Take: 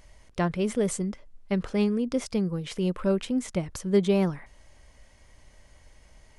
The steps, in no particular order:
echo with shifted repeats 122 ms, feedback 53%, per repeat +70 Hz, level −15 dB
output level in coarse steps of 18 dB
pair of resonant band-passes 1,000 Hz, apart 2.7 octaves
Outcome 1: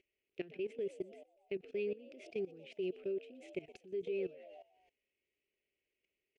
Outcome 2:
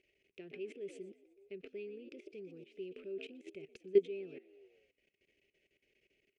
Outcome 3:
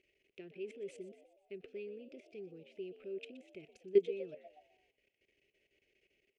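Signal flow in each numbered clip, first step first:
pair of resonant band-passes, then echo with shifted repeats, then output level in coarse steps
echo with shifted repeats, then output level in coarse steps, then pair of resonant band-passes
output level in coarse steps, then pair of resonant band-passes, then echo with shifted repeats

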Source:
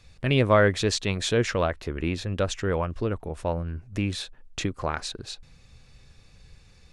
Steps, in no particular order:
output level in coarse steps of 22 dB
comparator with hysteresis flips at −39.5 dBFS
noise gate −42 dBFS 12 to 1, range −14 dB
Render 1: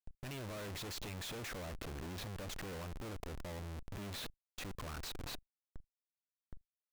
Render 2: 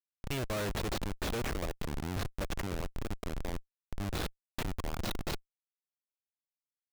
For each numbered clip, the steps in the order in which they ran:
comparator with hysteresis, then noise gate, then output level in coarse steps
noise gate, then output level in coarse steps, then comparator with hysteresis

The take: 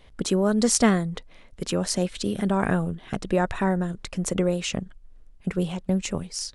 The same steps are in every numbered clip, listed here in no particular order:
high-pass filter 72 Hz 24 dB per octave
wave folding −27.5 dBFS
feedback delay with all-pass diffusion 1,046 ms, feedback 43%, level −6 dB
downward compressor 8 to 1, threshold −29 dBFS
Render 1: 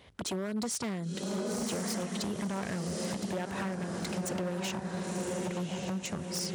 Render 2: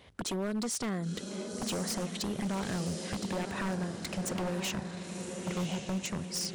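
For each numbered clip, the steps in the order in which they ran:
feedback delay with all-pass diffusion, then downward compressor, then wave folding, then high-pass filter
high-pass filter, then downward compressor, then feedback delay with all-pass diffusion, then wave folding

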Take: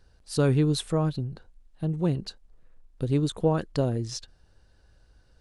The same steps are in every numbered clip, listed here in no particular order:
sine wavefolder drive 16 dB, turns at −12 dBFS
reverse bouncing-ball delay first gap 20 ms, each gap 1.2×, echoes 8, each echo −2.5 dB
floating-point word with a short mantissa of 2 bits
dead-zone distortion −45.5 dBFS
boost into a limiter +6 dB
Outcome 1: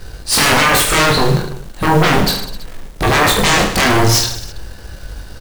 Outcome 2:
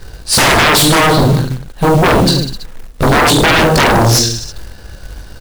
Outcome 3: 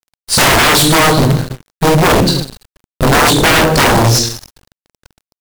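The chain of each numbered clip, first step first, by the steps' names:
boost into a limiter, then sine wavefolder, then floating-point word with a short mantissa, then reverse bouncing-ball delay, then dead-zone distortion
reverse bouncing-ball delay, then sine wavefolder, then boost into a limiter, then dead-zone distortion, then floating-point word with a short mantissa
reverse bouncing-ball delay, then floating-point word with a short mantissa, then dead-zone distortion, then sine wavefolder, then boost into a limiter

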